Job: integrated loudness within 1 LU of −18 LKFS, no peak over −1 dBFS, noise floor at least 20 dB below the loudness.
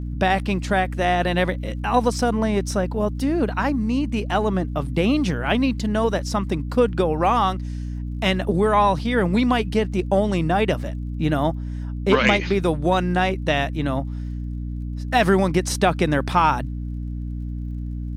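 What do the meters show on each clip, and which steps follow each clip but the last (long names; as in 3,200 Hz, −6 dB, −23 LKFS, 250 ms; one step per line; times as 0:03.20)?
crackle rate 37 per second; mains hum 60 Hz; hum harmonics up to 300 Hz; level of the hum −26 dBFS; integrated loudness −22.0 LKFS; sample peak −2.0 dBFS; target loudness −18.0 LKFS
→ click removal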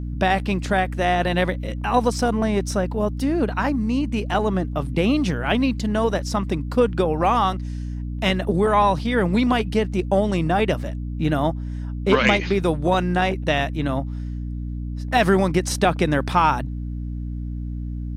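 crackle rate 0.39 per second; mains hum 60 Hz; hum harmonics up to 300 Hz; level of the hum −26 dBFS
→ mains-hum notches 60/120/180/240/300 Hz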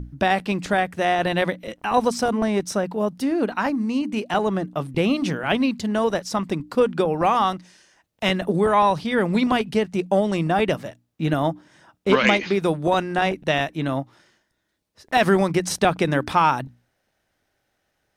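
mains hum none found; integrated loudness −22.0 LKFS; sample peak −3.0 dBFS; target loudness −18.0 LKFS
→ level +4 dB
brickwall limiter −1 dBFS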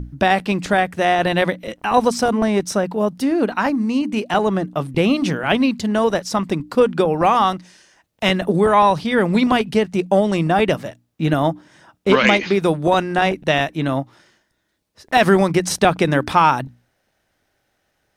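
integrated loudness −18.0 LKFS; sample peak −1.0 dBFS; background noise floor −69 dBFS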